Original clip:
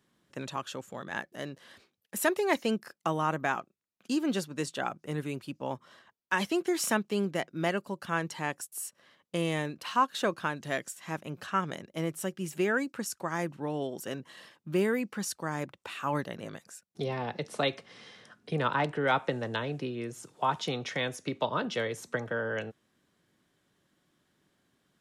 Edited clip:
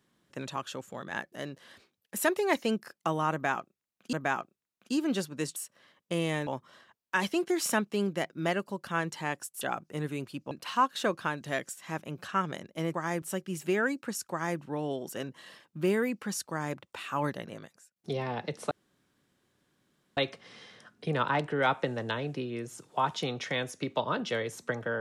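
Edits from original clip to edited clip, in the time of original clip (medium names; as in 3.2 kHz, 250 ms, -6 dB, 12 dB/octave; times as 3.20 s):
3.32–4.13 s: loop, 2 plays
4.75–5.65 s: swap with 8.79–9.70 s
13.22–13.50 s: copy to 12.13 s
16.30–16.87 s: fade out, to -20 dB
17.62 s: insert room tone 1.46 s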